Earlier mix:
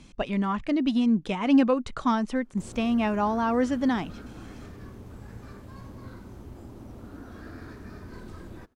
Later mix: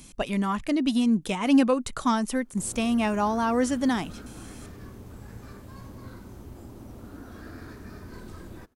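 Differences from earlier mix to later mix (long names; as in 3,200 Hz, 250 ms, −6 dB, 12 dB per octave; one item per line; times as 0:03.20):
speech: remove high-frequency loss of the air 86 metres
master: add high-shelf EQ 6,900 Hz +8.5 dB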